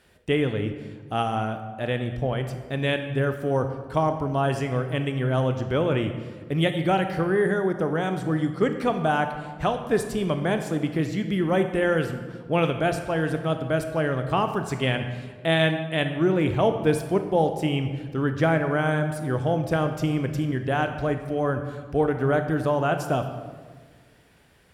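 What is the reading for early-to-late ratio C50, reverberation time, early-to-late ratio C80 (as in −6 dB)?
8.5 dB, 1.5 s, 10.0 dB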